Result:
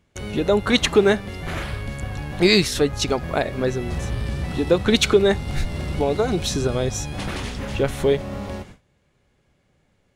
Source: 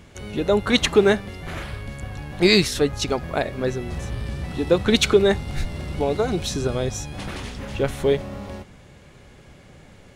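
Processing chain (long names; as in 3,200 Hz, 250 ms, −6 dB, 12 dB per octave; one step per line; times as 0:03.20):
noise gate with hold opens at −35 dBFS
in parallel at −1.5 dB: downward compressor, threshold −25 dBFS, peak gain reduction 14.5 dB
on the sum: level −1.5 dB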